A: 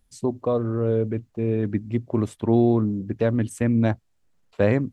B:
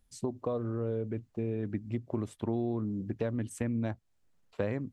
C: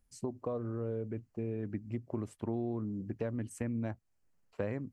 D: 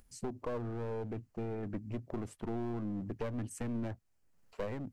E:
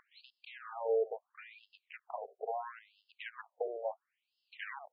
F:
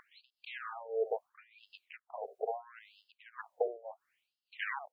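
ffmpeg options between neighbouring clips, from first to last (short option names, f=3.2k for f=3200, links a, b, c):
-af "acompressor=threshold=-27dB:ratio=3,volume=-4dB"
-af "equalizer=f=3.6k:t=o:w=0.3:g=-10,volume=-3.5dB"
-af "acompressor=mode=upward:threshold=-58dB:ratio=2.5,aeval=exprs='clip(val(0),-1,0.01)':c=same,volume=2dB"
-af "afftfilt=real='re*between(b*sr/1024,530*pow(3800/530,0.5+0.5*sin(2*PI*0.74*pts/sr))/1.41,530*pow(3800/530,0.5+0.5*sin(2*PI*0.74*pts/sr))*1.41)':imag='im*between(b*sr/1024,530*pow(3800/530,0.5+0.5*sin(2*PI*0.74*pts/sr))/1.41,530*pow(3800/530,0.5+0.5*sin(2*PI*0.74*pts/sr))*1.41)':win_size=1024:overlap=0.75,volume=10.5dB"
-af "tremolo=f=1.7:d=0.91,volume=7dB"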